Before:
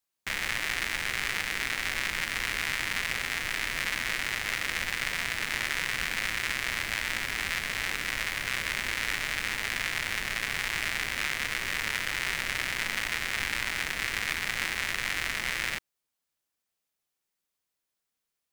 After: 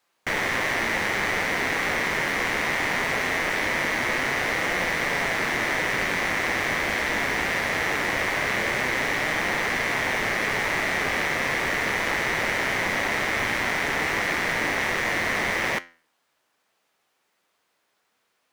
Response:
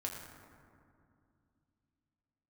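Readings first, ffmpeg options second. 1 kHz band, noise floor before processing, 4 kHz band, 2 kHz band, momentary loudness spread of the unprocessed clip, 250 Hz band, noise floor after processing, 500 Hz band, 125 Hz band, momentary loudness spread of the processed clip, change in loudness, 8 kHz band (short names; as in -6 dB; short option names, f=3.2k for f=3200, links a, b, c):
+11.0 dB, -85 dBFS, +1.0 dB, +6.0 dB, 1 LU, +13.5 dB, -73 dBFS, +16.0 dB, +8.0 dB, 0 LU, +5.5 dB, +1.5 dB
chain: -filter_complex "[0:a]asplit=2[a][b];[b]highpass=f=720:p=1,volume=29dB,asoftclip=type=tanh:threshold=-10.5dB[c];[a][c]amix=inputs=2:normalize=0,lowpass=f=1k:p=1,volume=-6dB,flanger=delay=5.5:depth=9.2:regen=82:speed=0.21:shape=triangular,volume=7dB"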